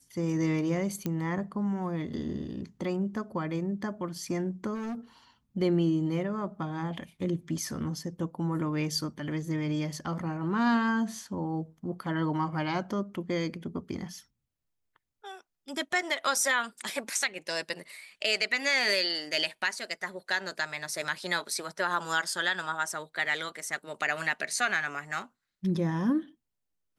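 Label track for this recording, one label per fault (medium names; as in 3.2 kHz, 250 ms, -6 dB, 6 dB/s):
1.060000	1.060000	pop -18 dBFS
4.740000	4.950000	clipped -32.5 dBFS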